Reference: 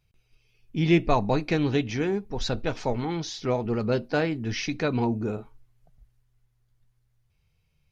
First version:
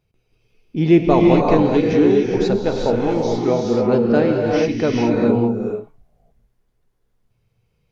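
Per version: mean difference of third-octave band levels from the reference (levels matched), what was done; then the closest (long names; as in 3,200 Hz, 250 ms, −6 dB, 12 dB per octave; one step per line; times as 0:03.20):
7.5 dB: parametric band 390 Hz +11.5 dB 2.7 octaves
reverb whose tail is shaped and stops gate 450 ms rising, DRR −1 dB
level −2.5 dB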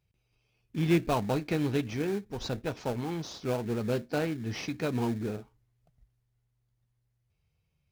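5.5 dB: in parallel at −6.5 dB: sample-rate reduction 2,000 Hz, jitter 20%
on the sum: high-pass filter 46 Hz
level −7.5 dB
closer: second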